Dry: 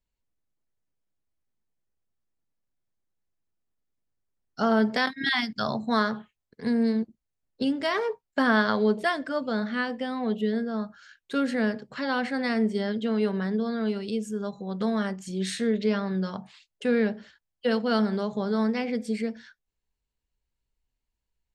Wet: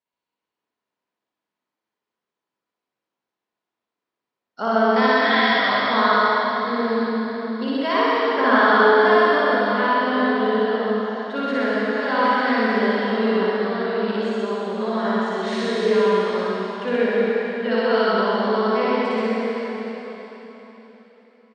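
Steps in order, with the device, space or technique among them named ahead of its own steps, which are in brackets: station announcement (BPF 320–3600 Hz; bell 1000 Hz +7 dB 0.24 oct; loudspeakers at several distances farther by 20 m 0 dB, 43 m -2 dB; reverb RT60 4.0 s, pre-delay 63 ms, DRR -4 dB)

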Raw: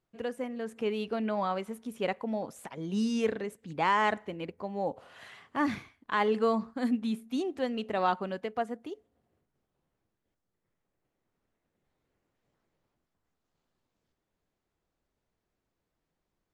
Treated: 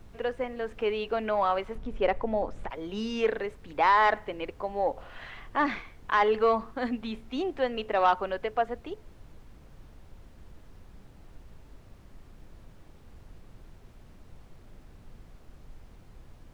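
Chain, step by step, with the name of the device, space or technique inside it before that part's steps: aircraft cabin announcement (BPF 420–3300 Hz; soft clip -18.5 dBFS, distortion -20 dB; brown noise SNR 16 dB); 1.75–2.7 tilt -2 dB/oct; gain +6.5 dB

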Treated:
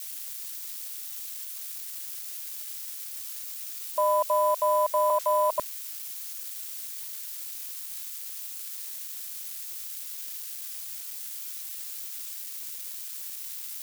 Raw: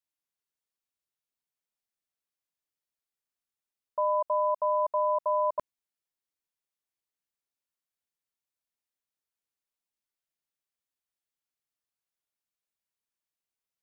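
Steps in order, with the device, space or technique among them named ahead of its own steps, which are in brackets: 5.1–5.5 steep high-pass 500 Hz 48 dB/oct; budget class-D amplifier (switching dead time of 0.076 ms; switching spikes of -27 dBFS); gain +3 dB

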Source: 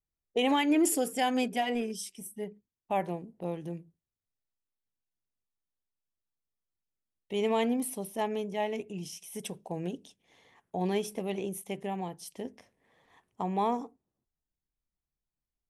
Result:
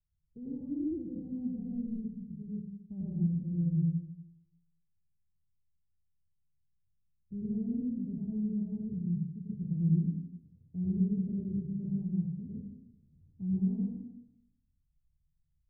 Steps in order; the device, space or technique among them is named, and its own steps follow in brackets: club heard from the street (limiter -21 dBFS, peak gain reduction 4.5 dB; LPF 160 Hz 24 dB/oct; reverb RT60 0.85 s, pre-delay 89 ms, DRR -6.5 dB); gain +8 dB

